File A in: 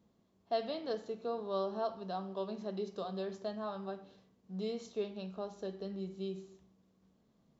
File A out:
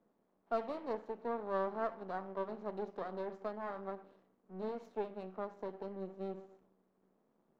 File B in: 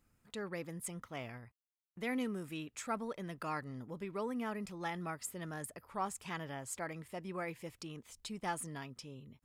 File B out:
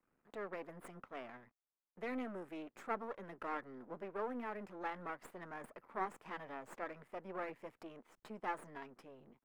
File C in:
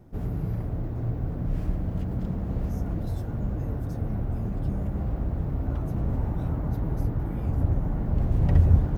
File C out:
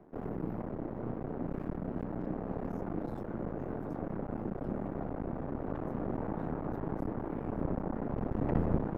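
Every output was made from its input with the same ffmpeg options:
-filter_complex "[0:a]aeval=exprs='max(val(0),0)':c=same,acrossover=split=200 2000:gain=0.141 1 0.112[a][b][c];[a][b][c]amix=inputs=3:normalize=0,volume=3.5dB"

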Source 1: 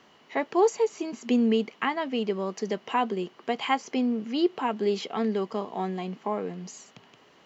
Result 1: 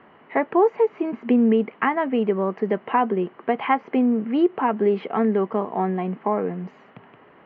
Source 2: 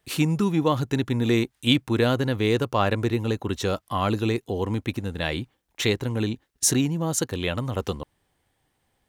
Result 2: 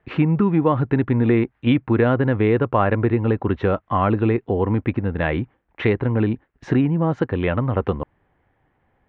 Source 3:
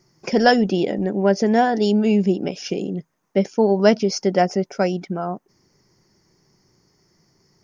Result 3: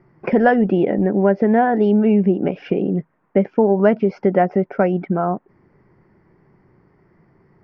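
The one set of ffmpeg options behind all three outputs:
-af "lowpass=f=2.1k:w=0.5412,lowpass=f=2.1k:w=1.3066,acompressor=threshold=-23dB:ratio=2,volume=7.5dB"

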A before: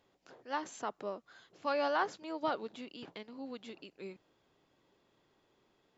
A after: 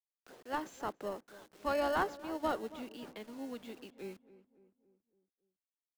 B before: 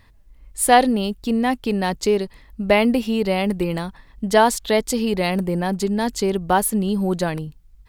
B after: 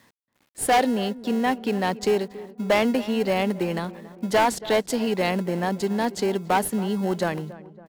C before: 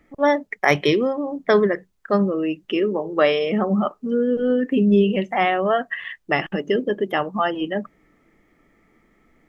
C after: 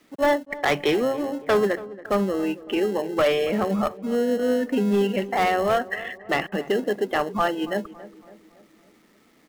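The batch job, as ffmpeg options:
-filter_complex "[0:a]highpass=f=160:w=0.5412,highpass=f=160:w=1.3066,highshelf=f=4k:g=-8.5,acrossover=split=480|3000[a][b][c];[a]acompressor=threshold=-36dB:ratio=1.5[d];[d][b][c]amix=inputs=3:normalize=0,asplit=2[e][f];[f]acrusher=samples=37:mix=1:aa=0.000001,volume=-11.5dB[g];[e][g]amix=inputs=2:normalize=0,volume=14.5dB,asoftclip=hard,volume=-14.5dB,acrusher=bits=9:mix=0:aa=0.000001,asplit=2[h][i];[i]adelay=279,lowpass=f=1.4k:p=1,volume=-16.5dB,asplit=2[j][k];[k]adelay=279,lowpass=f=1.4k:p=1,volume=0.53,asplit=2[l][m];[m]adelay=279,lowpass=f=1.4k:p=1,volume=0.53,asplit=2[n][o];[o]adelay=279,lowpass=f=1.4k:p=1,volume=0.53,asplit=2[p][q];[q]adelay=279,lowpass=f=1.4k:p=1,volume=0.53[r];[h][j][l][n][p][r]amix=inputs=6:normalize=0"

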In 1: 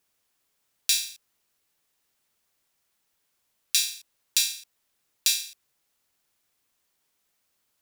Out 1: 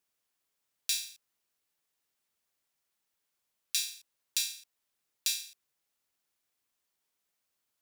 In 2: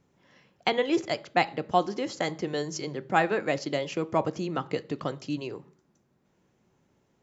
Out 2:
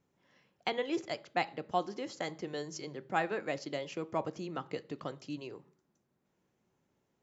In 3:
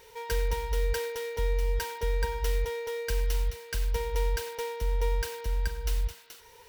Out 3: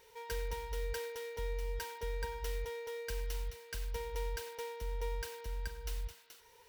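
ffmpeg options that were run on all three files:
-af "lowshelf=f=170:g=-3.5,volume=-8dB"

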